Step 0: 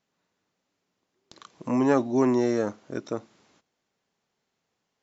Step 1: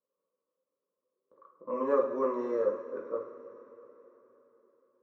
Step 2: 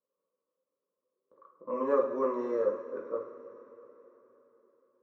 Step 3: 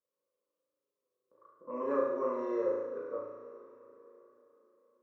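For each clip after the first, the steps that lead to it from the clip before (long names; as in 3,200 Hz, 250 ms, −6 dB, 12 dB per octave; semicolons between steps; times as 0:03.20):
low-pass that shuts in the quiet parts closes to 740 Hz, open at −19 dBFS; pair of resonant band-passes 760 Hz, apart 1.1 octaves; coupled-rooms reverb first 0.52 s, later 4.1 s, from −16 dB, DRR −1 dB
no processing that can be heard
flutter between parallel walls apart 6.2 metres, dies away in 0.88 s; level −5.5 dB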